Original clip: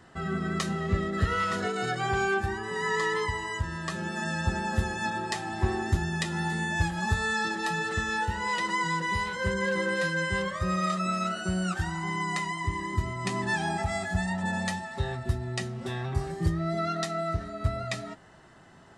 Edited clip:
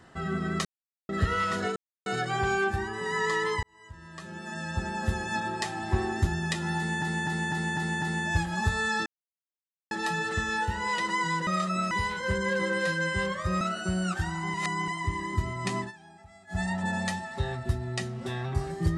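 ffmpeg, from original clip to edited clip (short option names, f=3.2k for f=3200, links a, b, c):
-filter_complex "[0:a]asplit=18[a][b][c][d][e][f][g][h][i][j][k][l][m][n][o][p][q][r];[a]atrim=end=0.65,asetpts=PTS-STARTPTS,afade=t=out:st=0.646:d=0.004:c=hsin[s];[b]atrim=start=0.65:end=1.09,asetpts=PTS-STARTPTS,volume=0[t];[c]atrim=start=1.09:end=1.76,asetpts=PTS-STARTPTS,afade=t=in:d=0.004:c=hsin,afade=t=out:st=0.666:d=0.004:c=hsin,apad=pad_dur=0.3[u];[d]atrim=start=1.76:end=3.33,asetpts=PTS-STARTPTS,afade=t=in:d=0.004:c=hsin,afade=t=out:st=1.566:d=0.004:c=hsin[v];[e]atrim=start=3.33:end=6.722,asetpts=PTS-STARTPTS,afade=t=in:d=1.69[w];[f]atrim=start=6.468:end=6.722[x];[g]atrim=start=6.468:end=6.722[y];[h]atrim=start=6.468:end=6.722[z];[i]atrim=start=6.468:end=6.722[aa];[j]atrim=start=6.468:end=7.51,asetpts=PTS-STARTPTS,afade=t=out:st=1.038:d=0.004:c=hsin,apad=pad_dur=0.85[ab];[k]atrim=start=7.51:end=9.072,asetpts=PTS-STARTPTS,afade=t=in:d=0.004:c=hsin[ac];[l]atrim=start=10.768:end=11.212[ad];[m]atrim=start=9.068:end=10.772[ae];[n]atrim=start=11.208:end=12.142[af];[o]atrim=start=12.138:end=12.482,asetpts=PTS-STARTPTS,areverse[ag];[p]atrim=start=12.478:end=13.52,asetpts=PTS-STARTPTS,afade=t=out:st=0.902:d=0.14:silence=0.0749894[ah];[q]atrim=start=13.52:end=14.07,asetpts=PTS-STARTPTS,volume=-22.5dB[ai];[r]atrim=start=14.07,asetpts=PTS-STARTPTS,afade=t=in:d=0.14:silence=0.0749894[aj];[s][t][u][v][w]concat=n=5:v=0:a=1[ak];[ak][x]acrossfade=d=0.004:c1=hsin:c2=hsin[al];[al][y]acrossfade=d=0.004:c1=hsin:c2=hsin[am];[am][z]acrossfade=d=0.004:c1=hsin:c2=hsin[an];[an][aa]acrossfade=d=0.004:c1=hsin:c2=hsin[ao];[ab][ac]concat=n=2:v=0:a=1[ap];[ao][ap]acrossfade=d=0.004:c1=hsin:c2=hsin[aq];[aq][ad]acrossfade=d=0.004:c1=hsin:c2=hsin[ar];[ar][ae]acrossfade=d=0.004:c1=hsin:c2=hsin[as];[as][af]acrossfade=d=0.004:c1=hsin:c2=hsin[at];[at][ag]acrossfade=d=0.004:c1=hsin:c2=hsin[au];[ah][ai][aj]concat=n=3:v=0:a=1[av];[au][av]acrossfade=d=0.004:c1=hsin:c2=hsin"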